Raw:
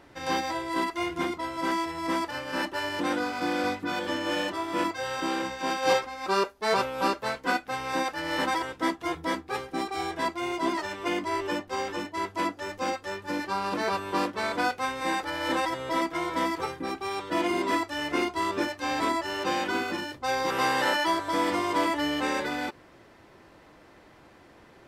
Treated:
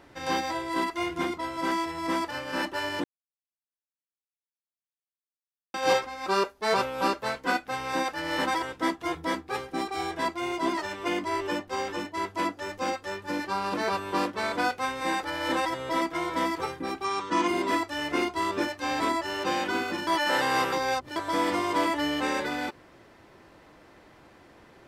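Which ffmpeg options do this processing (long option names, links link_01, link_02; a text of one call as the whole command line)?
ffmpeg -i in.wav -filter_complex "[0:a]asettb=1/sr,asplit=3[link_01][link_02][link_03];[link_01]atrim=end=17.044[link_04];[link_02]atrim=start=17.04:end=17.48,asetpts=PTS-STARTPTS,afade=type=in:duration=0.004:curve=qsin,afade=type=out:start_time=0.436:duration=0.004:curve=qsin,highpass=100,equalizer=frequency=230:width_type=q:width=4:gain=7,equalizer=frequency=630:width_type=q:width=4:gain=-8,equalizer=frequency=1100:width_type=q:width=4:gain=10,equalizer=frequency=6200:width_type=q:width=4:gain=8,lowpass=frequency=9200:width=0.5412,lowpass=frequency=9200:width=1.3066[link_05];[link_03]atrim=start=17.476[link_06];[link_04][link_05]acrossfade=duration=0.004:curve1=hsin:curve2=qsin[link_07];[link_07][link_06]acrossfade=duration=0.004:curve1=qsin:curve2=hsin,asplit=5[link_08][link_09][link_10][link_11][link_12];[link_08]atrim=end=3.04,asetpts=PTS-STARTPTS,afade=type=out:start_time=3.036:duration=0.004:curve=hsin[link_13];[link_09]atrim=start=3.04:end=5.74,asetpts=PTS-STARTPTS,volume=0[link_14];[link_10]atrim=start=5.74:end=20.072,asetpts=PTS-STARTPTS,afade=type=in:duration=0.004:curve=hsin[link_15];[link_11]atrim=start=20.068:end=21.162,asetpts=PTS-STARTPTS,areverse[link_16];[link_12]atrim=start=21.158[link_17];[link_13][link_14][link_15]concat=n=3:v=0:a=1[link_18];[link_18][link_16]acrossfade=duration=0.004:curve1=hsin:curve2=hsin[link_19];[link_19][link_17]acrossfade=duration=0.004:curve1=hsin:curve2=hsin" out.wav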